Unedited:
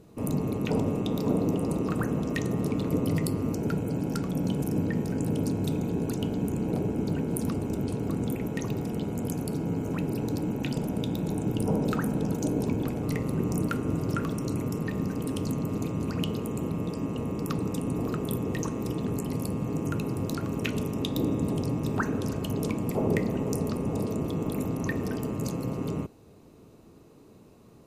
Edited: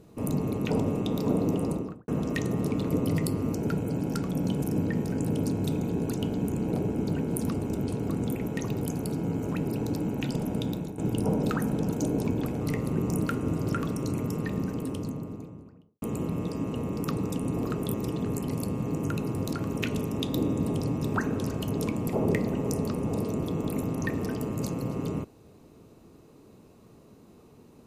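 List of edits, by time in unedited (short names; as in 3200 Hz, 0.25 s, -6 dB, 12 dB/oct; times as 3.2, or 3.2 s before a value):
1.63–2.08 studio fade out
8.82–9.24 cut
11.11–11.4 fade out, to -13.5 dB
14.85–16.44 studio fade out
18.36–18.76 cut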